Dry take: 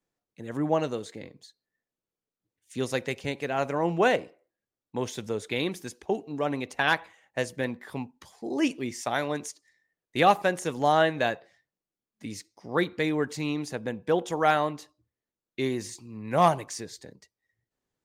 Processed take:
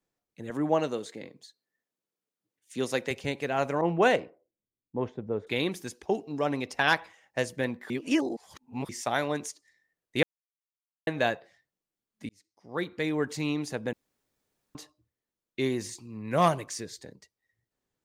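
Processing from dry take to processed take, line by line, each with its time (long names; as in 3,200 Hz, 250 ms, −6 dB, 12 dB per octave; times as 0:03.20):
0:00.50–0:03.11: high-pass filter 160 Hz
0:03.81–0:05.47: low-pass that shuts in the quiet parts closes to 300 Hz, open at −18 dBFS
0:06.03–0:07.40: parametric band 5,200 Hz +10.5 dB 0.21 octaves
0:07.90–0:08.89: reverse
0:10.23–0:11.07: silence
0:12.29–0:13.35: fade in
0:13.93–0:14.75: fill with room tone
0:16.31–0:17.01: parametric band 820 Hz −7.5 dB 0.39 octaves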